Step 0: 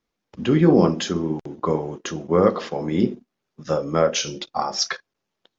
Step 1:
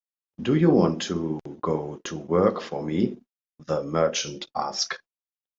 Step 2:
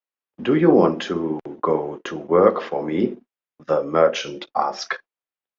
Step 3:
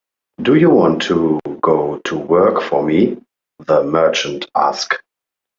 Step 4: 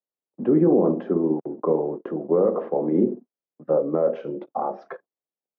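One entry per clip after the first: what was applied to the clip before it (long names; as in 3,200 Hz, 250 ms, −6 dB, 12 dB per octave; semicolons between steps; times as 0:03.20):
noise gate −39 dBFS, range −41 dB; level −3.5 dB
three-way crossover with the lows and the highs turned down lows −12 dB, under 270 Hz, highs −16 dB, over 3,000 Hz; level +7 dB
boost into a limiter +10.5 dB; level −1 dB
flat-topped band-pass 310 Hz, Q 0.56; level −7 dB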